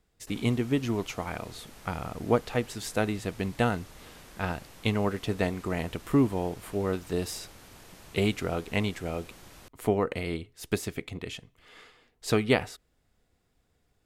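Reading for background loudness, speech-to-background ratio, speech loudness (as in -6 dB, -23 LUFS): -50.5 LUFS, 20.0 dB, -30.5 LUFS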